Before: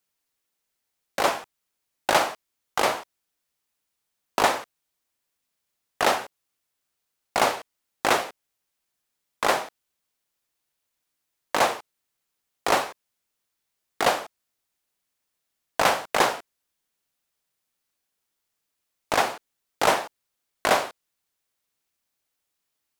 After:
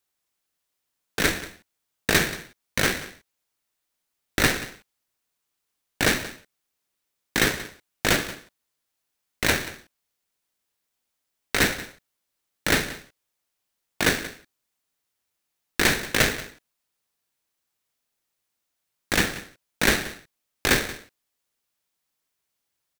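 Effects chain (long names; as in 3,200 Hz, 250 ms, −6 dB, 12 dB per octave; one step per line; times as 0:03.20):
on a send: single-tap delay 181 ms −16.5 dB
on the sum: ring modulator with a square carrier 1,000 Hz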